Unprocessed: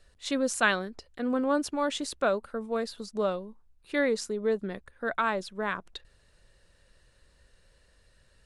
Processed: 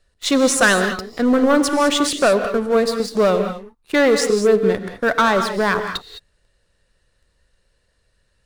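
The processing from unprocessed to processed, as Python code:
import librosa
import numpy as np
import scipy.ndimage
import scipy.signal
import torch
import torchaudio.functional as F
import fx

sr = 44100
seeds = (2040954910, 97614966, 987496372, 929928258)

y = fx.leveller(x, sr, passes=3)
y = fx.rev_gated(y, sr, seeds[0], gate_ms=230, shape='rising', drr_db=7.0)
y = F.gain(torch.from_numpy(y), 3.0).numpy()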